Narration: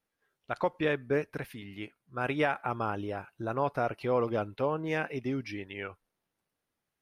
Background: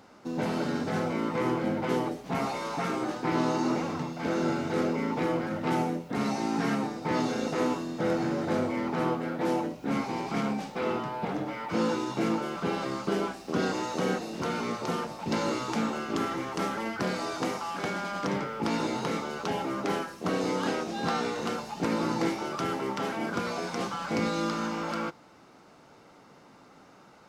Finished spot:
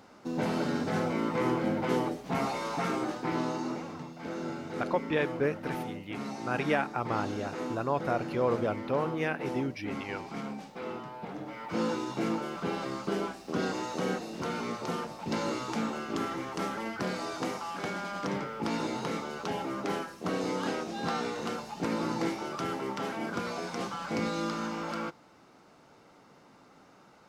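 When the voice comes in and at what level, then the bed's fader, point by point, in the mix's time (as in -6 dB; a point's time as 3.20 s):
4.30 s, 0.0 dB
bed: 2.96 s -0.5 dB
3.85 s -8.5 dB
11.33 s -8.5 dB
11.79 s -3 dB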